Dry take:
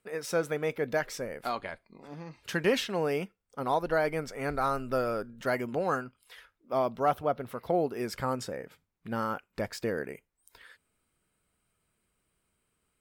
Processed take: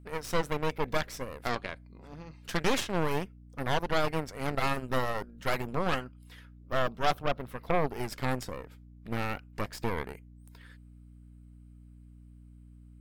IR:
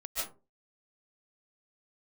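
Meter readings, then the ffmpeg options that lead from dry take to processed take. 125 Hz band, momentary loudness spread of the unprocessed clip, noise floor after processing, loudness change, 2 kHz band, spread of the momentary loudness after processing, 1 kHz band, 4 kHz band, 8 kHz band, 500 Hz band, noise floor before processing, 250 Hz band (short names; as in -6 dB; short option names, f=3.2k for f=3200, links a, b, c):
+4.0 dB, 14 LU, -53 dBFS, -1.0 dB, +1.0 dB, 17 LU, -0.5 dB, +3.0 dB, +0.5 dB, -3.0 dB, -79 dBFS, -0.5 dB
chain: -af "aeval=exprs='0.188*(cos(1*acos(clip(val(0)/0.188,-1,1)))-cos(1*PI/2))+0.0668*(cos(6*acos(clip(val(0)/0.188,-1,1)))-cos(6*PI/2))':c=same,aeval=exprs='val(0)+0.00447*(sin(2*PI*60*n/s)+sin(2*PI*2*60*n/s)/2+sin(2*PI*3*60*n/s)/3+sin(2*PI*4*60*n/s)/4+sin(2*PI*5*60*n/s)/5)':c=same,volume=-3.5dB"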